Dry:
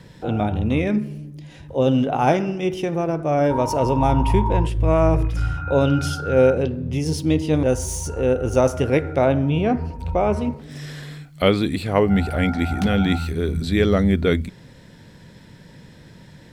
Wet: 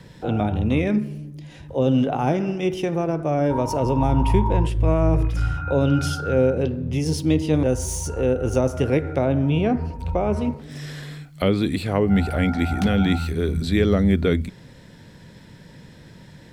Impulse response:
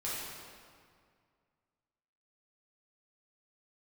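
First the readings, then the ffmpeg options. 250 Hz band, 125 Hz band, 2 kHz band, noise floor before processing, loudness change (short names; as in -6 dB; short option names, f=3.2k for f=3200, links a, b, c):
0.0 dB, 0.0 dB, -2.5 dB, -46 dBFS, -1.5 dB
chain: -filter_complex "[0:a]acrossover=split=420[a][b];[b]acompressor=threshold=-23dB:ratio=6[c];[a][c]amix=inputs=2:normalize=0"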